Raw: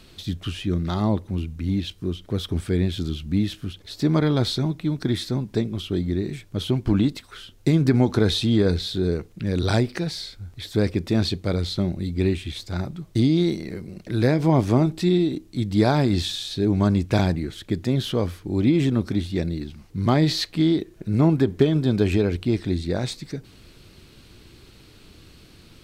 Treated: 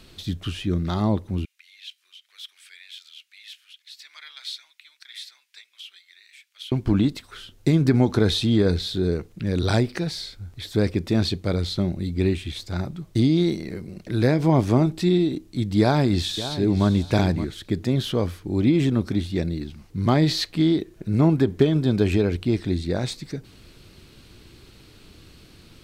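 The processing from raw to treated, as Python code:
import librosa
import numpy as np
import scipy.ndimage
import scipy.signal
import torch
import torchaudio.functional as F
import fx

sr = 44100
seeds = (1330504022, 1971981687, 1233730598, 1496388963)

y = fx.ladder_highpass(x, sr, hz=1800.0, resonance_pct=35, at=(1.45, 6.72))
y = fx.echo_throw(y, sr, start_s=15.8, length_s=1.07, ms=570, feedback_pct=15, wet_db=-12.5)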